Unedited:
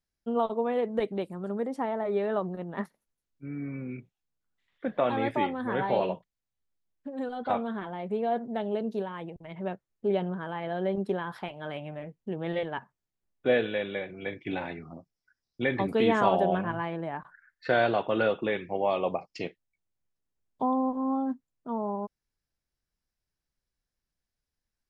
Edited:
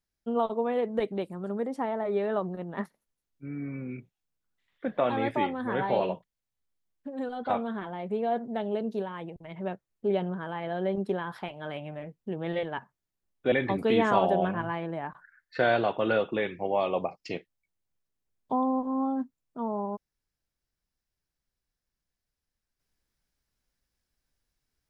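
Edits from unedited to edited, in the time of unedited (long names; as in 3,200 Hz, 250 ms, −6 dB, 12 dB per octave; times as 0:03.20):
0:13.52–0:15.62: remove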